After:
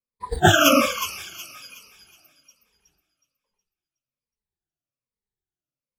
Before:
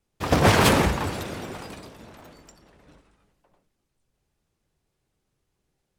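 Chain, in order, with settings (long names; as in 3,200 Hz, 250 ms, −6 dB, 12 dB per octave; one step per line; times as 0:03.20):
rippled gain that drifts along the octave scale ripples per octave 0.92, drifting −1.2 Hz, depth 19 dB
noise reduction from a noise print of the clip's start 24 dB
delay with a high-pass on its return 368 ms, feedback 37%, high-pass 2,900 Hz, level −8 dB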